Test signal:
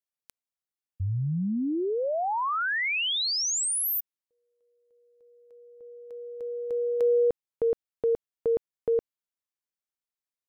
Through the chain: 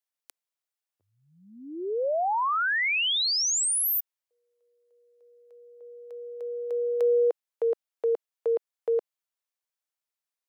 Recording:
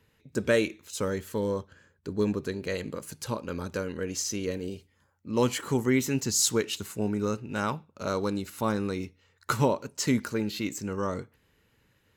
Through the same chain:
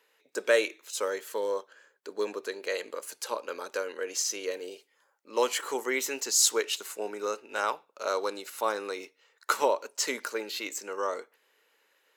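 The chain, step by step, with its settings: high-pass 440 Hz 24 dB/octave; trim +2 dB

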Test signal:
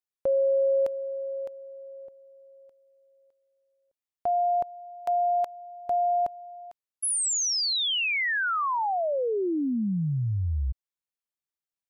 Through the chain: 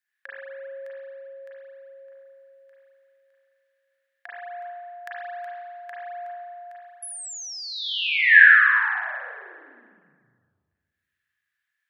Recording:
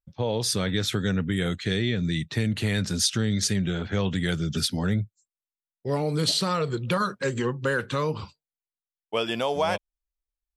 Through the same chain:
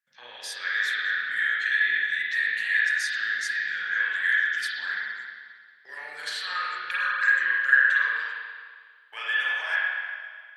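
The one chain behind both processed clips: compression 2.5:1, threshold -44 dBFS; resonant high-pass 1.7 kHz, resonance Q 14; spring tank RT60 1.8 s, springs 33/41 ms, chirp 25 ms, DRR -8 dB; trim +2 dB

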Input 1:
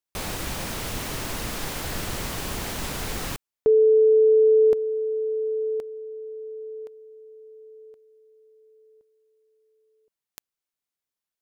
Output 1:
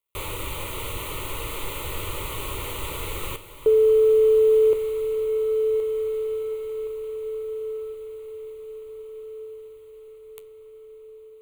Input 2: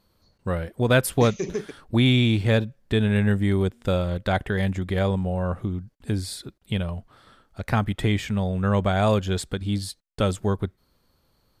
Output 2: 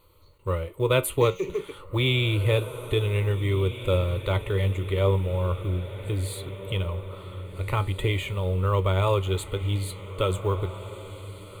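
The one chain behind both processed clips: companding laws mixed up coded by mu; peaking EQ 860 Hz +2.5 dB 0.31 oct; flange 0.42 Hz, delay 10 ms, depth 1.1 ms, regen +73%; static phaser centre 1.1 kHz, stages 8; echo that smears into a reverb 1657 ms, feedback 48%, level -13 dB; trim +5 dB

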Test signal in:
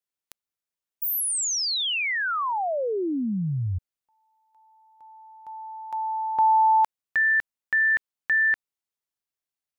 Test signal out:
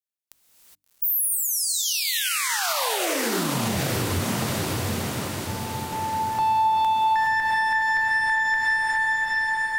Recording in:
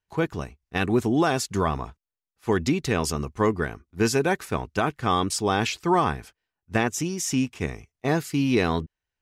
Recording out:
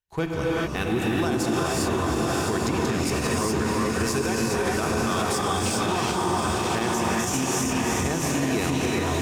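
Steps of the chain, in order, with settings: Chebyshev shaper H 5 -32 dB, 7 -25 dB, 8 -33 dB, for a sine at -10.5 dBFS; gate -47 dBFS, range -6 dB; treble shelf 4.6 kHz +6.5 dB; echo that smears into a reverb 712 ms, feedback 62%, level -4.5 dB; gated-style reverb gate 440 ms rising, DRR -4 dB; compression 4:1, threshold -20 dBFS; bass shelf 110 Hz +5 dB; hum notches 50/100/150/200/250/300 Hz; peak limiter -15 dBFS

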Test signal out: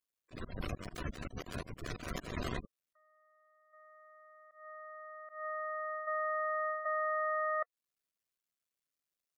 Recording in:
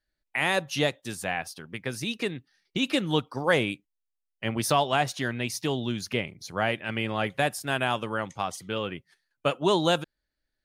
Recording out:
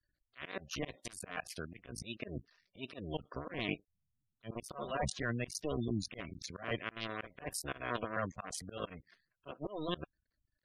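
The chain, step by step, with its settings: cycle switcher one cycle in 2, muted; spectral gate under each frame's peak -15 dB strong; reverse; compression 10:1, threshold -34 dBFS; reverse; Butterworth band-stop 850 Hz, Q 4.8; slow attack 169 ms; trim +3 dB

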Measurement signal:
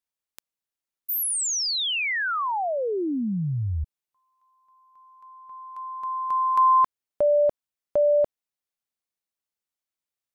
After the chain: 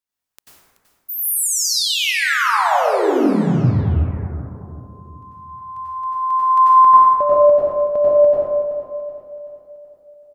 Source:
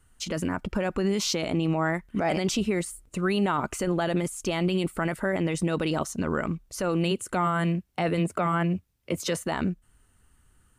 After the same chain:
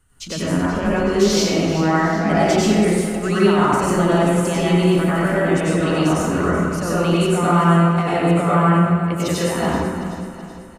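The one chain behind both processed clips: on a send: feedback delay 379 ms, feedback 52%, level -13 dB; on the sum: plate-style reverb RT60 1.7 s, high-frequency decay 0.45×, pre-delay 80 ms, DRR -8.5 dB

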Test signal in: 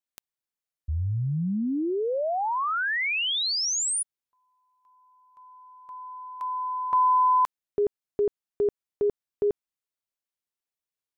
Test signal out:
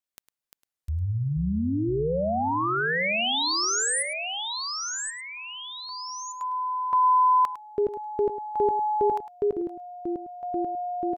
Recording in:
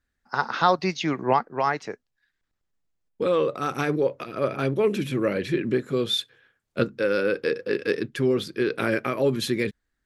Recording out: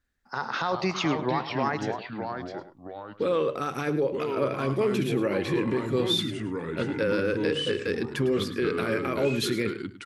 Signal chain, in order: peak limiter -17.5 dBFS; ever faster or slower copies 314 ms, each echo -3 st, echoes 2, each echo -6 dB; delay 105 ms -13.5 dB

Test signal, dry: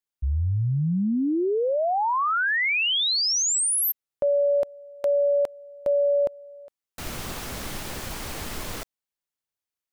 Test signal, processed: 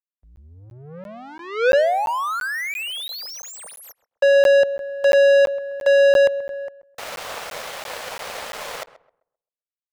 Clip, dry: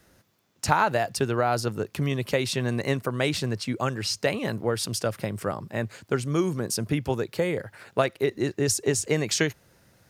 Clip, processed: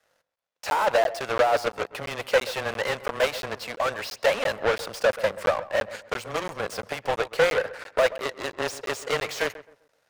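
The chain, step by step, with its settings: frequency shift -13 Hz; overdrive pedal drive 36 dB, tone 3.2 kHz, clips at -5 dBFS; resonant low shelf 420 Hz -6.5 dB, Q 3; power-law waveshaper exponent 2; on a send: filtered feedback delay 131 ms, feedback 29%, low-pass 1.5 kHz, level -15 dB; on the sum: crackling interface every 0.34 s, samples 512, zero, from 0.36 s; trim -6 dB

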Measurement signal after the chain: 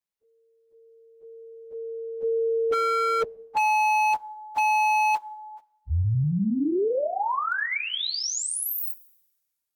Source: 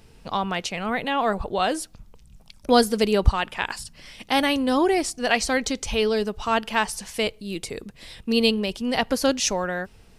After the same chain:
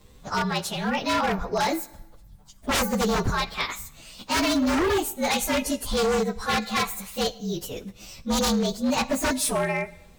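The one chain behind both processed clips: frequency axis rescaled in octaves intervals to 114%; two-slope reverb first 0.87 s, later 2.8 s, from -28 dB, DRR 16.5 dB; wavefolder -21 dBFS; trim +3.5 dB

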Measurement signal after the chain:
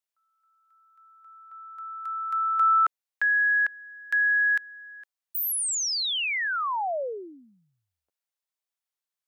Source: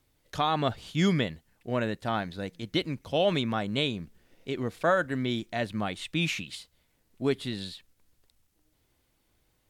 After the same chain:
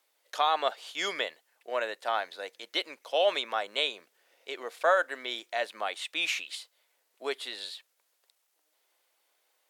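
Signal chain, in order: high-pass 510 Hz 24 dB/octave; trim +1.5 dB

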